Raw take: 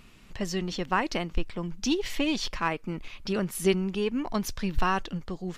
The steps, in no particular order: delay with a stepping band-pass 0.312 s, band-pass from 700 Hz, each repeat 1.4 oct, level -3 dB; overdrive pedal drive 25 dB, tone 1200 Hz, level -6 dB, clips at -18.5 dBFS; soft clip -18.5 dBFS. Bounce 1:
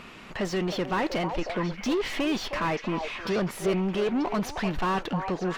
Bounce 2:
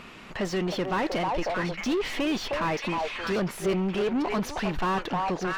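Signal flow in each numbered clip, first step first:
soft clip > overdrive pedal > delay with a stepping band-pass; delay with a stepping band-pass > soft clip > overdrive pedal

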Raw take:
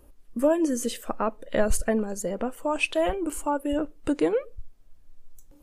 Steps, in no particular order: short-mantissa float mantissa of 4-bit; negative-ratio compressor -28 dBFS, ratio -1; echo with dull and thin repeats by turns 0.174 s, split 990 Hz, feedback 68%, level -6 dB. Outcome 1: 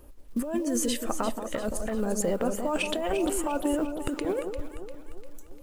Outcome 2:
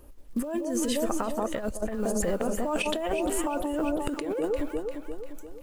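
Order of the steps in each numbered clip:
negative-ratio compressor > short-mantissa float > echo with dull and thin repeats by turns; short-mantissa float > echo with dull and thin repeats by turns > negative-ratio compressor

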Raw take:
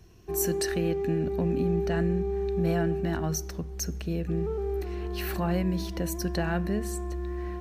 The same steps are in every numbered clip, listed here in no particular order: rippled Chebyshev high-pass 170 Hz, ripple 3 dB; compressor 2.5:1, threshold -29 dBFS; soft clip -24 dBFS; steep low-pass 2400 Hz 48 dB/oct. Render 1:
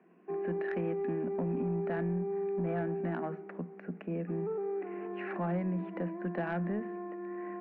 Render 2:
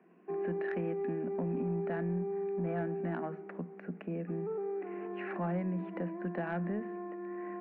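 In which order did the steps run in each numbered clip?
rippled Chebyshev high-pass > compressor > steep low-pass > soft clip; steep low-pass > compressor > rippled Chebyshev high-pass > soft clip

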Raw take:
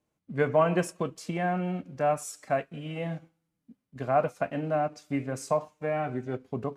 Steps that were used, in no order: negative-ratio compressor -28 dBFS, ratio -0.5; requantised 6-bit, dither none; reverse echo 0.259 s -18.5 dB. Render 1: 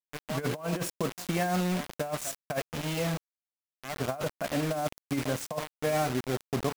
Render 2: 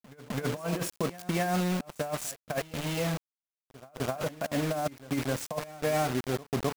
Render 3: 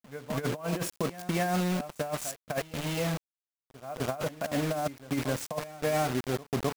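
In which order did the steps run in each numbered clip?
reverse echo > requantised > negative-ratio compressor; requantised > negative-ratio compressor > reverse echo; requantised > reverse echo > negative-ratio compressor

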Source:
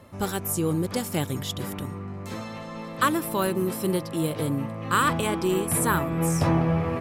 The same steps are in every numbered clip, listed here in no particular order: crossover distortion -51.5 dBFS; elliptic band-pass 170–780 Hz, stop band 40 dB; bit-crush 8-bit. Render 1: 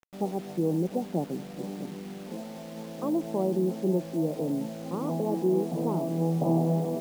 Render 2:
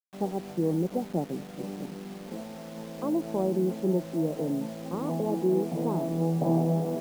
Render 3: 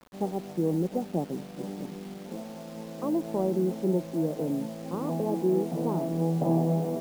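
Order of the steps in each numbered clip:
crossover distortion > elliptic band-pass > bit-crush; elliptic band-pass > crossover distortion > bit-crush; elliptic band-pass > bit-crush > crossover distortion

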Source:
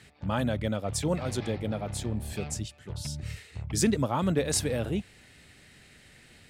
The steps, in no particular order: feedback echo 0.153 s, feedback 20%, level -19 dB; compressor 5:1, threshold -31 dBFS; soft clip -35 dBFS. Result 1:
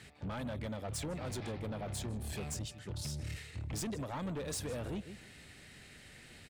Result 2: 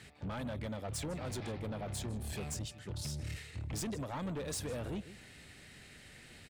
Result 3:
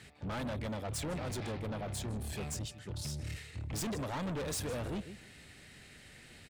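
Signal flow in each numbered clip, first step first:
feedback echo > compressor > soft clip; compressor > feedback echo > soft clip; feedback echo > soft clip > compressor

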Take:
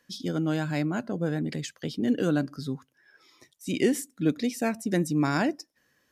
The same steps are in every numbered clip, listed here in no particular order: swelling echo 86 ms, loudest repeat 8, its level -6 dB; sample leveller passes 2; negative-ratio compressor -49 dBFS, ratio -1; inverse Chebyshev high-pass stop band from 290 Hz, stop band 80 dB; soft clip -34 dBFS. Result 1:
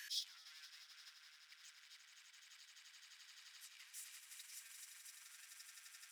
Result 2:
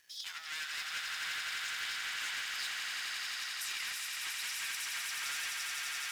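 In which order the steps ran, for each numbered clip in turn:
soft clip > swelling echo > sample leveller > negative-ratio compressor > inverse Chebyshev high-pass; soft clip > inverse Chebyshev high-pass > negative-ratio compressor > swelling echo > sample leveller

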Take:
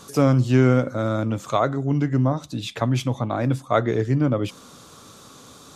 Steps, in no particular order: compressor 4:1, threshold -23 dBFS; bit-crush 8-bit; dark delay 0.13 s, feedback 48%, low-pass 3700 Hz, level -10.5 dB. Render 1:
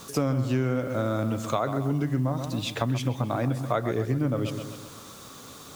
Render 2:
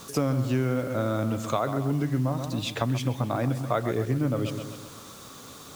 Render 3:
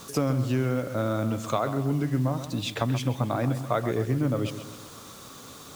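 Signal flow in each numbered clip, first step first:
dark delay > bit-crush > compressor; dark delay > compressor > bit-crush; compressor > dark delay > bit-crush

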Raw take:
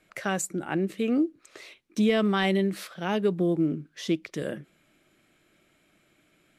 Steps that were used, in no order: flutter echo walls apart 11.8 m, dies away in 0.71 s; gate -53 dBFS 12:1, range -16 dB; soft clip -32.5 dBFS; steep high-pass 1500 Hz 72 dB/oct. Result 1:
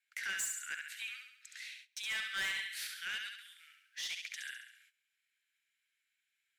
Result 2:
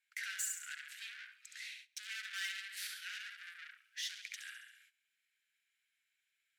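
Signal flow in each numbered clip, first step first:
flutter echo > gate > steep high-pass > soft clip; flutter echo > soft clip > gate > steep high-pass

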